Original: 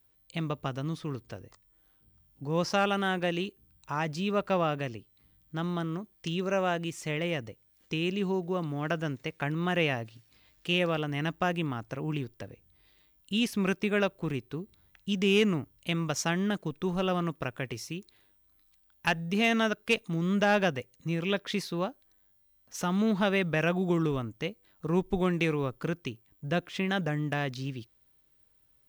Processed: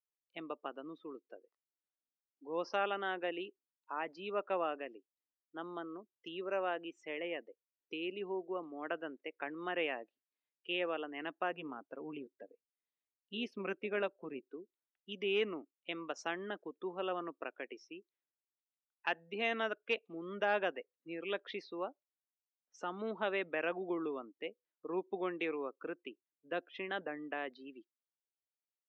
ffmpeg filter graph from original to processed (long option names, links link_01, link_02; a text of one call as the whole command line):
ffmpeg -i in.wav -filter_complex "[0:a]asettb=1/sr,asplit=3[link_01][link_02][link_03];[link_01]atrim=end=11.524[link_04];[link_02]atrim=start=11.52:end=14.51,asetpts=PTS-STARTPTS,afade=type=in:duration=0.004:curve=qsin,afade=type=out:start_time=2.986:duration=0.004:curve=qsin,lowshelf=frequency=220:gain=8.5,tremolo=f=170:d=0.261,bandreject=frequency=340:width=7.4[link_05];[link_03]atrim=start=14.506[link_06];[link_04][link_05]acrossfade=duration=0.004:curve1=hsin:curve2=qsin[link_07];[link_07][link_06]acrossfade=duration=0.004:curve1=qsin:curve2=hsin,highpass=frequency=300:width=0.5412,highpass=frequency=300:width=1.3066,afftdn=noise_reduction=24:noise_floor=-41,lowpass=3300,volume=-7dB" out.wav